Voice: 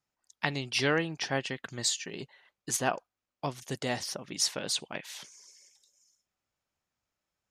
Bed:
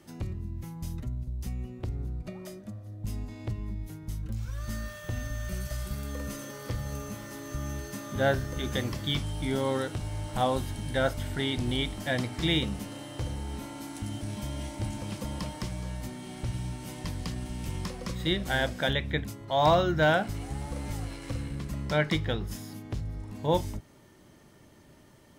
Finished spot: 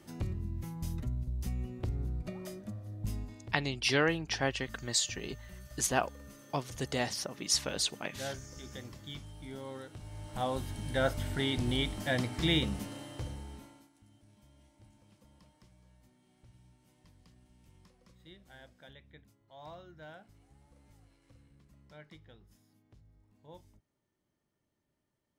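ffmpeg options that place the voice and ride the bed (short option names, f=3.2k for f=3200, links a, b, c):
-filter_complex "[0:a]adelay=3100,volume=-0.5dB[a];[1:a]volume=12dB,afade=t=out:st=3.04:d=0.49:silence=0.199526,afade=t=in:st=9.9:d=1.28:silence=0.223872,afade=t=out:st=12.78:d=1.12:silence=0.0562341[b];[a][b]amix=inputs=2:normalize=0"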